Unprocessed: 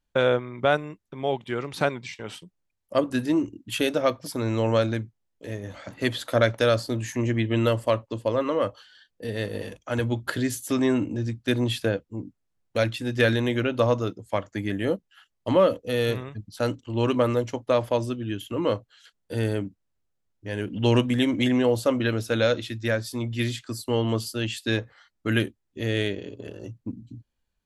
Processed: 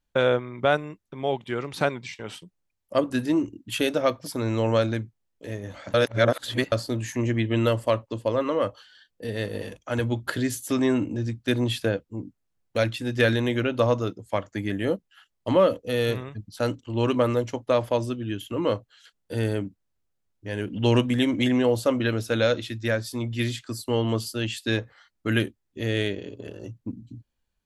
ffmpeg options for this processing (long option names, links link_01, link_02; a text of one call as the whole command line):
ffmpeg -i in.wav -filter_complex "[0:a]asplit=3[link_01][link_02][link_03];[link_01]atrim=end=5.942[link_04];[link_02]atrim=start=5.938:end=6.722,asetpts=PTS-STARTPTS,areverse[link_05];[link_03]atrim=start=6.718[link_06];[link_04][link_05]acrossfade=duration=0.004:curve1=hsin:curve2=hsin[link_07];[link_07][link_06]acrossfade=duration=0.004:curve1=hsin:curve2=hsin" out.wav